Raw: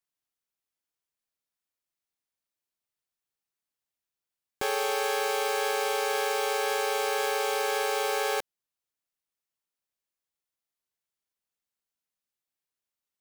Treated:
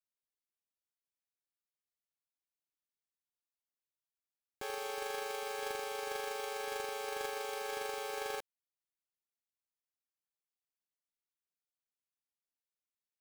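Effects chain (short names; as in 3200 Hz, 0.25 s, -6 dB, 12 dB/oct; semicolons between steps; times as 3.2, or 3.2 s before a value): gate -23 dBFS, range -30 dB; gain +17.5 dB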